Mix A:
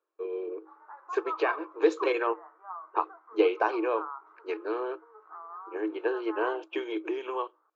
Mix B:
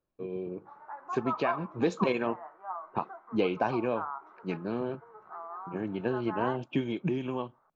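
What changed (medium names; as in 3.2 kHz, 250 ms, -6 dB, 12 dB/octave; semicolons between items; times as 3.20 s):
speech -8.5 dB; master: remove rippled Chebyshev high-pass 310 Hz, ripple 9 dB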